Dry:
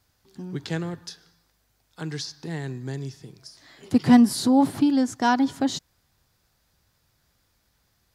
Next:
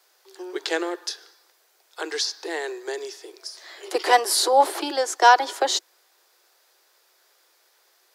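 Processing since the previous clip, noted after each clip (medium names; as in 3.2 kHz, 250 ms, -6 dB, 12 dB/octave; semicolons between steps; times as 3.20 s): steep high-pass 340 Hz 96 dB/octave; trim +8.5 dB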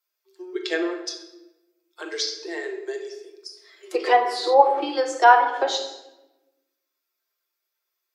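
expander on every frequency bin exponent 1.5; simulated room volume 450 m³, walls mixed, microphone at 0.91 m; low-pass that closes with the level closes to 1.9 kHz, closed at -15.5 dBFS; trim +1 dB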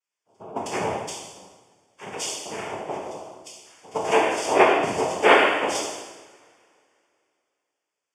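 noise-vocoded speech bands 4; Butterworth band-stop 4 kHz, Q 4.2; two-slope reverb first 0.95 s, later 2.8 s, from -22 dB, DRR -2.5 dB; trim -5.5 dB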